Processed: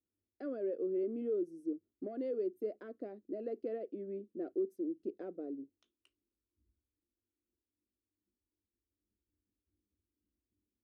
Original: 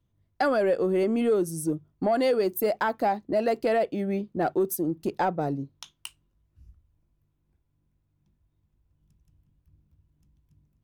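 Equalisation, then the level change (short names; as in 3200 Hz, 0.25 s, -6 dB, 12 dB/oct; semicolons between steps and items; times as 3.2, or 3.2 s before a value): band-pass 330 Hz, Q 1.2; fixed phaser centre 360 Hz, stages 4; -9.0 dB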